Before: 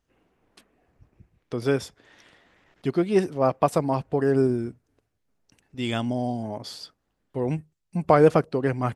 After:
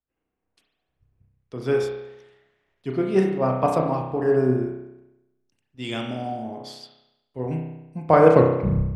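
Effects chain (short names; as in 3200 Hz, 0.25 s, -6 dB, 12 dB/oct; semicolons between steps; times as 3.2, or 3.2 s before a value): tape stop at the end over 0.67 s; high shelf 6100 Hz -6.5 dB; spring tank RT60 1.2 s, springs 31 ms, chirp 45 ms, DRR 0.5 dB; three-band expander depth 40%; gain -2 dB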